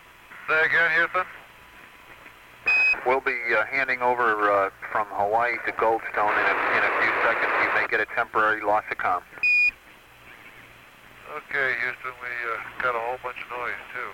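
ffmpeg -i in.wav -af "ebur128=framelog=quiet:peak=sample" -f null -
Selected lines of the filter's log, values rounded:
Integrated loudness:
  I:         -22.9 LUFS
  Threshold: -33.9 LUFS
Loudness range:
  LRA:         6.7 LU
  Threshold: -43.6 LUFS
  LRA low:   -28.9 LUFS
  LRA high:  -22.2 LUFS
Sample peak:
  Peak:       -9.6 dBFS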